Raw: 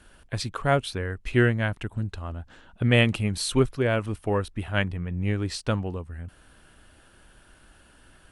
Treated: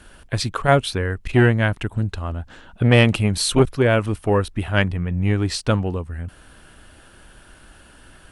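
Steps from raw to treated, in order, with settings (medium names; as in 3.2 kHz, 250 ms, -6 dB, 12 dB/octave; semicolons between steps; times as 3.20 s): transformer saturation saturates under 310 Hz; trim +7.5 dB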